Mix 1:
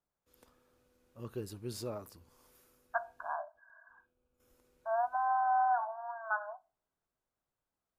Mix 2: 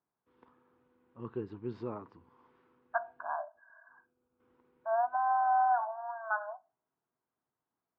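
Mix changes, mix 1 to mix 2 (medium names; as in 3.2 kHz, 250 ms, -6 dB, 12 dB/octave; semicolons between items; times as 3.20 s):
first voice: add cabinet simulation 170–2700 Hz, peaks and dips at 190 Hz -3 dB, 590 Hz -10 dB, 980 Hz +8 dB, 2.5 kHz -4 dB; master: add bass shelf 490 Hz +7 dB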